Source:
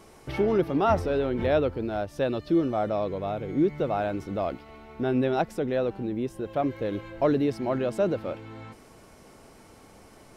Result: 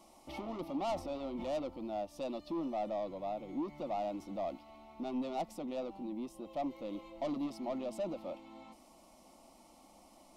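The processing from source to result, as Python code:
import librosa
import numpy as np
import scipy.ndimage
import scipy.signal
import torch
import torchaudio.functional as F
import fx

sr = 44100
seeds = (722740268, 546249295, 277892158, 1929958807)

y = fx.bass_treble(x, sr, bass_db=-7, treble_db=-2)
y = 10.0 ** (-26.0 / 20.0) * np.tanh(y / 10.0 ** (-26.0 / 20.0))
y = fx.fixed_phaser(y, sr, hz=430.0, stages=6)
y = y * librosa.db_to_amplitude(-4.0)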